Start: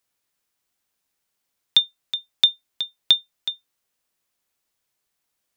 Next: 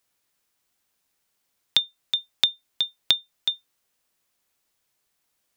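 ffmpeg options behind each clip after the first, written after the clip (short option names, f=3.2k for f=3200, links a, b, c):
-af "acompressor=threshold=-20dB:ratio=6,volume=3dB"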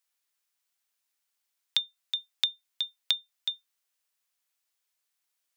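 -af "highpass=f=1.3k:p=1,volume=-6dB"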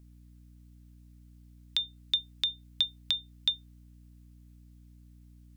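-af "alimiter=limit=-16dB:level=0:latency=1:release=50,aeval=exprs='val(0)+0.00141*(sin(2*PI*60*n/s)+sin(2*PI*2*60*n/s)/2+sin(2*PI*3*60*n/s)/3+sin(2*PI*4*60*n/s)/4+sin(2*PI*5*60*n/s)/5)':c=same,volume=4dB"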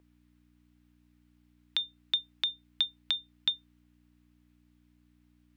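-filter_complex "[0:a]acrossover=split=330 3300:gain=0.126 1 0.2[a][b][c];[a][b][c]amix=inputs=3:normalize=0,volume=4.5dB"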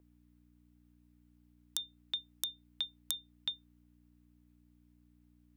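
-af "tiltshelf=f=1.2k:g=9,aeval=exprs='(mod(8.41*val(0)+1,2)-1)/8.41':c=same,crystalizer=i=4:c=0,volume=-9dB"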